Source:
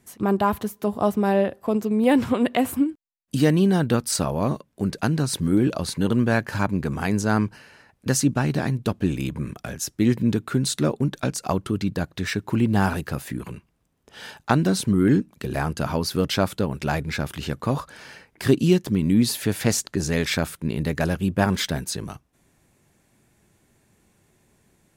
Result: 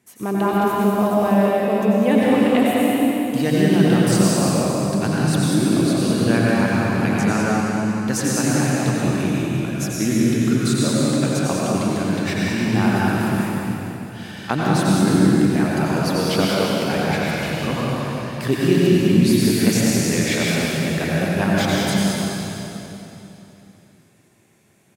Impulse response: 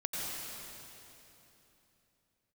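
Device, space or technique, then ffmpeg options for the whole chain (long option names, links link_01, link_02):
PA in a hall: -filter_complex "[0:a]highpass=120,equalizer=frequency=2400:width_type=o:width=0.59:gain=3.5,aecho=1:1:195:0.473[link_01];[1:a]atrim=start_sample=2205[link_02];[link_01][link_02]afir=irnorm=-1:irlink=0,asettb=1/sr,asplit=3[link_03][link_04][link_05];[link_03]atrim=end=16.454[link_06];[link_04]atrim=start=16.45:end=16.97,asetpts=PTS-STARTPTS,afade=type=in:duration=0.004:curve=qsin,afade=type=out:start_time=0.516:duration=0.004:curve=qsin,highpass=130[link_07];[link_05]atrim=start=16.966[link_08];[link_06][link_07]acrossfade=duration=0.004:curve1=hsin:curve2=qsin[link_09];[link_09][link_08]acrossfade=duration=0.004:curve1=qsin:curve2=hsin,volume=-1dB"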